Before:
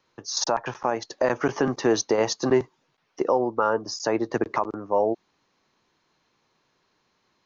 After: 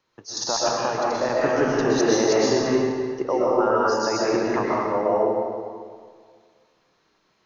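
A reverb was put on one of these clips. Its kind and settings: algorithmic reverb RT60 1.9 s, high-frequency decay 0.85×, pre-delay 85 ms, DRR -6.5 dB; trim -3.5 dB

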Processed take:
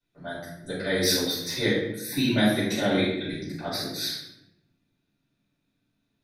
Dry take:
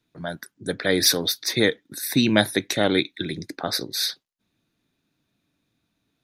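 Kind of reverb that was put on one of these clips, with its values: simulated room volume 270 m³, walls mixed, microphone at 6.6 m; trim -19 dB

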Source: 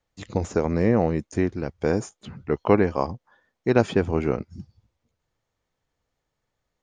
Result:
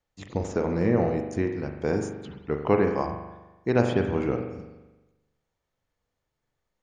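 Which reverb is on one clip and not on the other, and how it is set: spring tank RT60 1.1 s, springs 41 ms, chirp 60 ms, DRR 4 dB; trim -4 dB

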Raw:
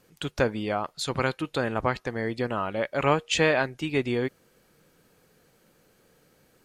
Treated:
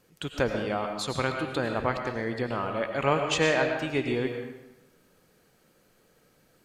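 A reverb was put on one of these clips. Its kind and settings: algorithmic reverb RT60 0.93 s, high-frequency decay 0.85×, pre-delay 65 ms, DRR 4 dB; trim -2.5 dB

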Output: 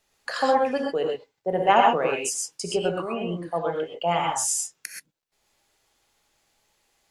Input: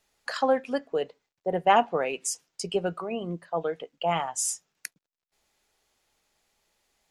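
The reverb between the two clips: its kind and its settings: gated-style reverb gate 150 ms rising, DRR 0 dB; trim +1 dB

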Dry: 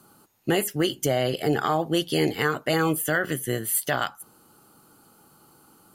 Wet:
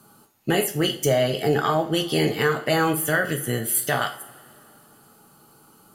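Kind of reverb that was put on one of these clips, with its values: two-slope reverb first 0.37 s, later 2.8 s, from -22 dB, DRR 4 dB; trim +1 dB

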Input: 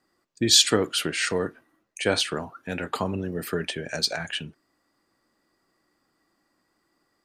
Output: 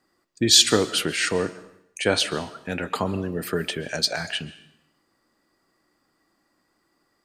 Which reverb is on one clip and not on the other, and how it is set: algorithmic reverb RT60 0.72 s, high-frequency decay 1×, pre-delay 95 ms, DRR 16.5 dB; trim +2 dB

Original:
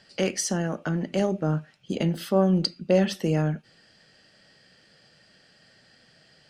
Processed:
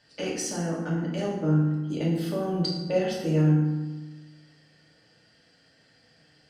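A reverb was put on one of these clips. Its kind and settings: FDN reverb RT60 1.2 s, low-frequency decay 1.3×, high-frequency decay 0.6×, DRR -5.5 dB; trim -9 dB

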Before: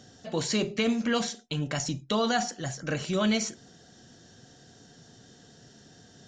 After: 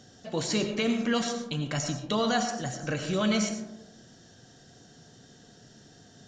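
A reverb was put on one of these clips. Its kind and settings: algorithmic reverb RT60 1 s, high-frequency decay 0.3×, pre-delay 55 ms, DRR 6.5 dB; trim -1 dB

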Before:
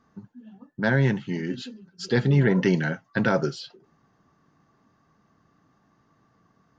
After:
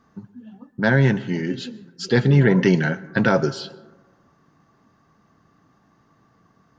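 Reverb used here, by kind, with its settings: plate-style reverb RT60 1.3 s, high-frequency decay 0.3×, pre-delay 105 ms, DRR 19 dB; trim +4.5 dB

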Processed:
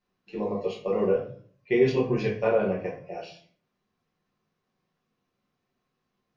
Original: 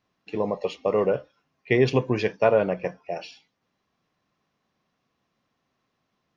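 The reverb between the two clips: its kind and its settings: simulated room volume 43 m³, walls mixed, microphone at 1.2 m; trim -11 dB

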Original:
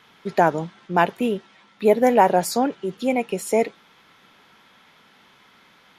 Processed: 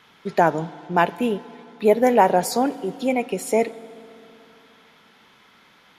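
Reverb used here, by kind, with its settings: FDN reverb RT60 2.9 s, low-frequency decay 1.25×, high-frequency decay 0.6×, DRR 18 dB

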